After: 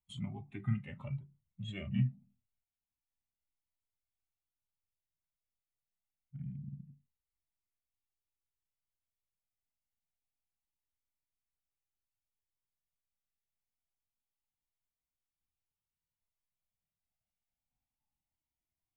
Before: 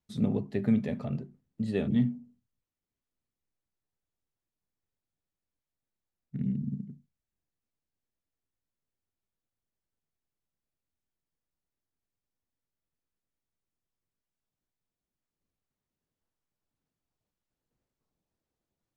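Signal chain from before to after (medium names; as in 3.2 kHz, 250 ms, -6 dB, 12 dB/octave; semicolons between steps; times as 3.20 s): spectral noise reduction 12 dB; in parallel at +0.5 dB: compression, threshold -39 dBFS, peak gain reduction 16.5 dB; on the sum: static phaser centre 1.7 kHz, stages 6; formant shift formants -3 st; Shepard-style flanger rising 0.27 Hz; trim +2.5 dB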